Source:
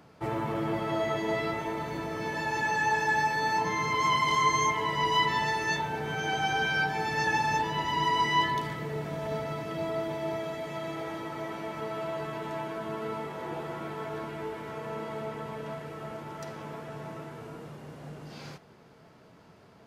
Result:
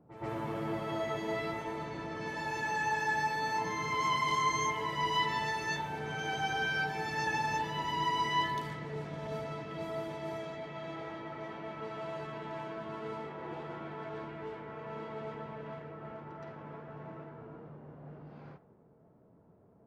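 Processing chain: low-pass opened by the level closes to 550 Hz, open at -28 dBFS; reverse echo 0.12 s -12.5 dB; gain -5.5 dB

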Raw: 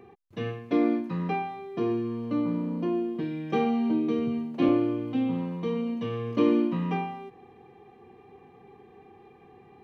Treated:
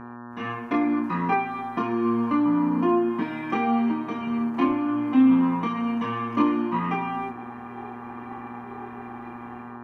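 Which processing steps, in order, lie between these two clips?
AGC gain up to 14.5 dB; bell 230 Hz -6.5 dB 2 oct; compressor, threshold -21 dBFS, peak gain reduction 9.5 dB; chorus voices 6, 0.25 Hz, delay 25 ms, depth 2.5 ms; buzz 120 Hz, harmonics 15, -41 dBFS -6 dB/oct; graphic EQ 125/250/500/1000/2000/4000 Hz -11/+11/-10/+11/+4/-8 dB

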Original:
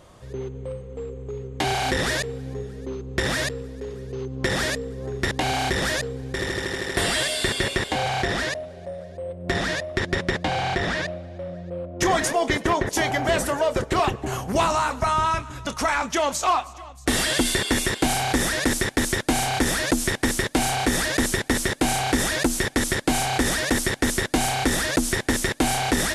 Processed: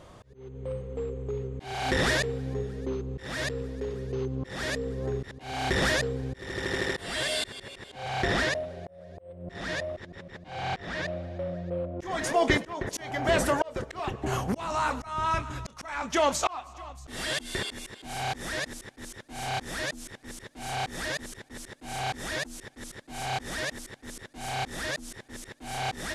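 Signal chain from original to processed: high shelf 7300 Hz -8 dB; auto swell 0.444 s

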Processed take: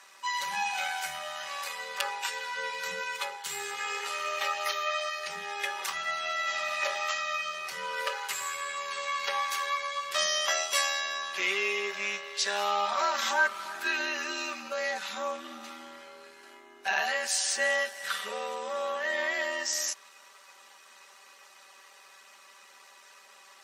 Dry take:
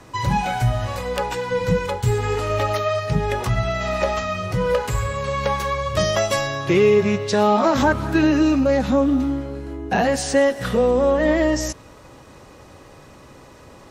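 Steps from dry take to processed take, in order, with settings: HPF 1400 Hz 12 dB/oct; granular stretch 1.7×, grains 25 ms

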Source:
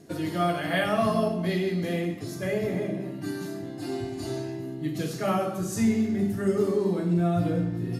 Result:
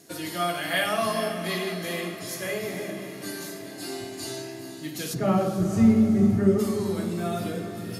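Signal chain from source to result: tilt +3 dB/oct, from 5.13 s -2.5 dB/oct, from 6.58 s +3.5 dB/oct; diffused feedback echo 0.455 s, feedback 58%, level -11 dB

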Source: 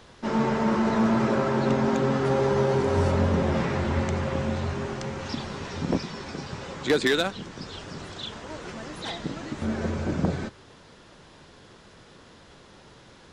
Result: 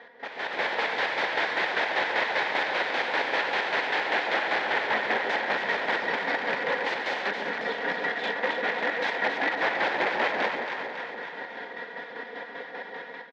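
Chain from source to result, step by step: rattling part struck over -24 dBFS, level -23 dBFS; bell 1900 Hz +9 dB 0.23 oct; comb 4.2 ms, depth 89%; in parallel at +1.5 dB: compressor 12:1, threshold -33 dBFS, peak gain reduction 20.5 dB; on the sum: wrapped overs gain 22.5 dB; chopper 5.1 Hz, depth 60%, duty 40%; on a send: echo with dull and thin repeats by turns 0.138 s, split 820 Hz, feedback 77%, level -4 dB; on the sum: AGC gain up to 11.5 dB; speaker cabinet 450–3100 Hz, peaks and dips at 510 Hz +3 dB, 840 Hz +4 dB, 1200 Hz -8 dB, 1800 Hz +5 dB, 2800 Hz -7 dB; gain -6 dB

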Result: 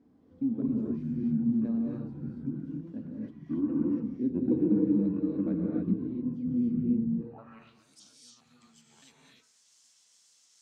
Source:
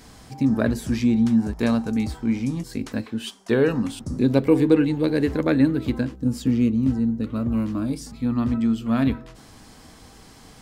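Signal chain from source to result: trilling pitch shifter -7.5 st, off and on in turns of 0.205 s; non-linear reverb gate 0.32 s rising, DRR -3 dB; band-pass sweep 280 Hz -> 6800 Hz, 7.16–7.85; gain -8.5 dB

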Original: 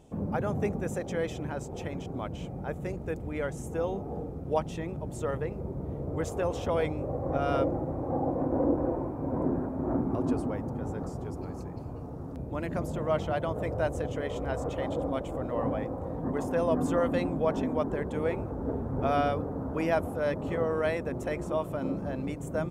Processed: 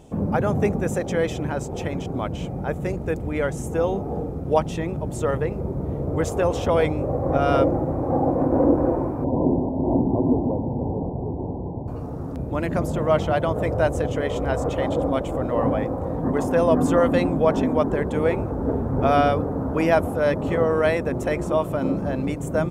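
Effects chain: 9.24–11.88 steep low-pass 1000 Hz 96 dB/oct; gain +8.5 dB

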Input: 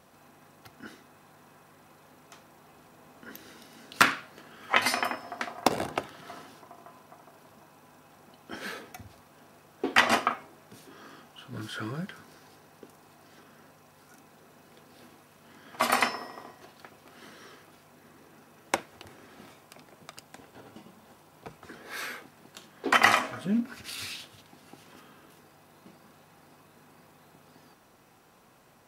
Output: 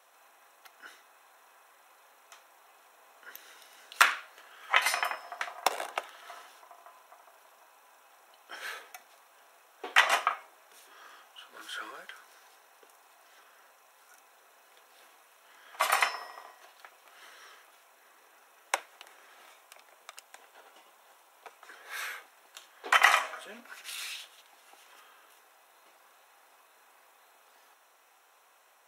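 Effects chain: Bessel high-pass 770 Hz, order 4; notch 4700 Hz, Q 5.8

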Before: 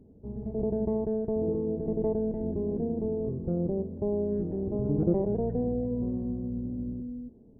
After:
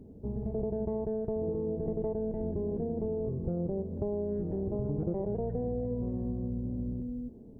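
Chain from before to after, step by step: dynamic EQ 270 Hz, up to -6 dB, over -42 dBFS, Q 1.5; compressor 4:1, threshold -35 dBFS, peak gain reduction 11 dB; gain +5 dB

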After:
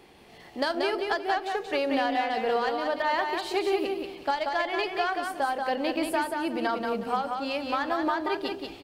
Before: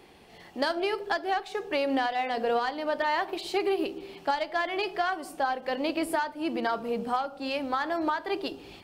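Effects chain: feedback echo 0.183 s, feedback 24%, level -4.5 dB

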